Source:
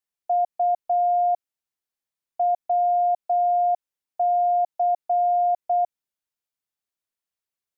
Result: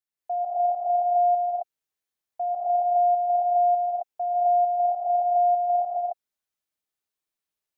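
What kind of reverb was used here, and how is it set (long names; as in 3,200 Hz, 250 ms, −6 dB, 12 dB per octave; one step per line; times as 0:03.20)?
reverb whose tail is shaped and stops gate 290 ms rising, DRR −7 dB
level −6.5 dB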